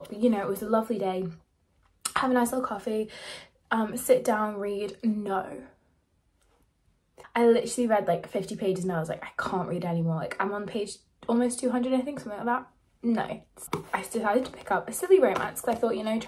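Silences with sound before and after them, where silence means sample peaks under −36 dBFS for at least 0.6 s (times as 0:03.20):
0:01.31–0:02.05
0:05.60–0:07.20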